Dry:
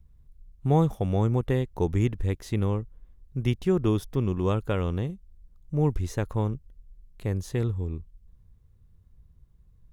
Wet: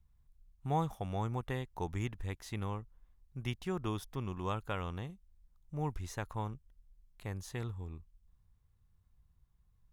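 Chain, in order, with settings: resonant low shelf 620 Hz -7 dB, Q 1.5; trim -5.5 dB

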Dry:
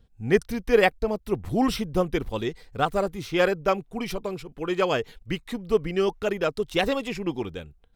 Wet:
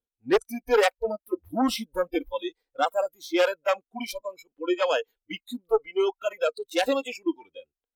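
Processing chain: Chebyshev shaper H 2 -13 dB, 5 -7 dB, 6 -11 dB, 8 -18 dB, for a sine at -6 dBFS; spectral noise reduction 28 dB; resonant low shelf 210 Hz -13 dB, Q 1.5; trim -8.5 dB

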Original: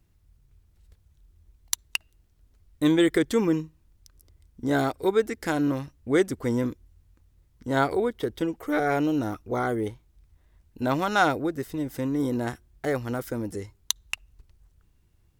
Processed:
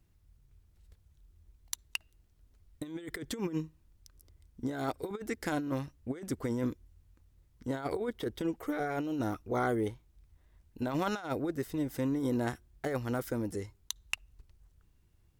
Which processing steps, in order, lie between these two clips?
compressor with a negative ratio -26 dBFS, ratio -0.5; trim -6 dB

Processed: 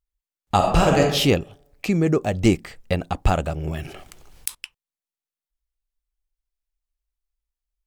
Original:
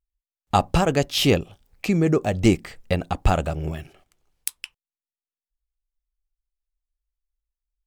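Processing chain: 0.56–1.00 s: reverb throw, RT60 0.82 s, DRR -1.5 dB; 3.68–4.55 s: level flattener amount 50%

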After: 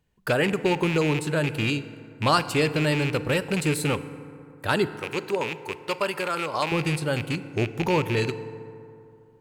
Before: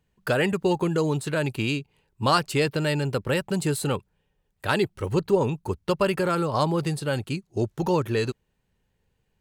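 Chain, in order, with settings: rattle on loud lows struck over -27 dBFS, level -19 dBFS; 4.96–6.72 s: high-pass 680 Hz 6 dB/octave; FDN reverb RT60 2.7 s, high-frequency decay 0.4×, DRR 12 dB

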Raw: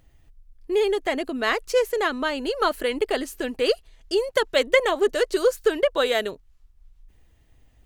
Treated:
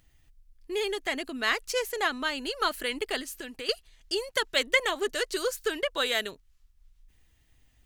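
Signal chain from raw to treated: 1.70–2.18 s: peaking EQ 750 Hz +7 dB 0.38 oct; 3.20–3.69 s: compression 3:1, threshold -31 dBFS, peak gain reduction 9.5 dB; FFT filter 260 Hz 0 dB, 530 Hz -4 dB, 1.7 kHz +5 dB, 5.4 kHz +8 dB; trim -7 dB

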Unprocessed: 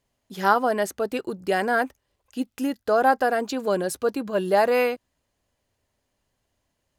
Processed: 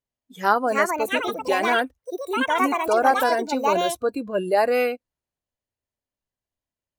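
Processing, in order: ever faster or slower copies 445 ms, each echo +6 st, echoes 2; spectral noise reduction 17 dB

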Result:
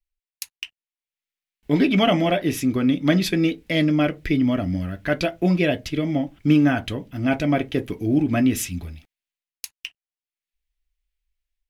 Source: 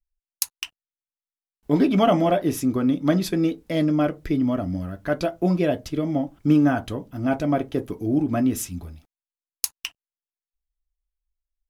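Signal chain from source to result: resonant high shelf 1.6 kHz +9 dB, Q 1.5; level rider gain up to 5.5 dB; tone controls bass +2 dB, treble -9 dB; trim -3.5 dB

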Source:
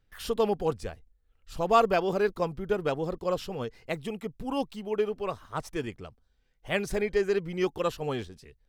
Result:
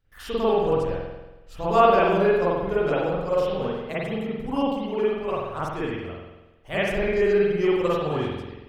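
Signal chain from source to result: spring tank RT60 1.1 s, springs 46 ms, chirp 70 ms, DRR -9.5 dB; trim -4 dB

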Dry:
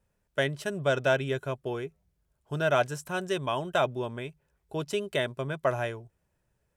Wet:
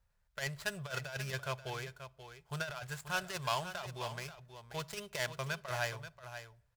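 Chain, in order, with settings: median filter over 15 samples; compressor with a negative ratio -29 dBFS, ratio -0.5; amplifier tone stack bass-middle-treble 10-0-10; delay 533 ms -11 dB; on a send at -20 dB: reverberation RT60 0.60 s, pre-delay 6 ms; on the sum: trim +6 dB

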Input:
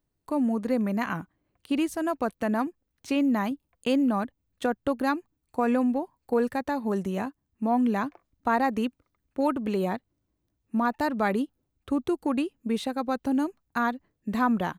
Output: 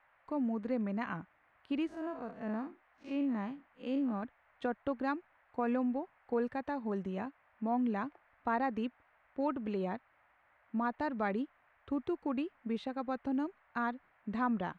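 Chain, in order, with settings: 1.87–4.23 s: spectral blur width 107 ms; low-pass 3.3 kHz 12 dB/octave; band noise 570–2100 Hz -61 dBFS; trim -8.5 dB

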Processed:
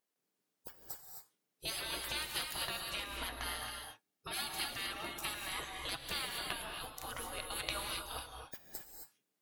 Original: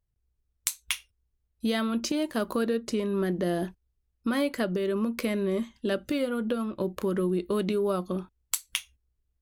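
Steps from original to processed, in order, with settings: spectral gate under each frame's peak -25 dB weak; 3.33–5.49 s: comb of notches 500 Hz; gated-style reverb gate 290 ms rising, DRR 2.5 dB; trim +5 dB

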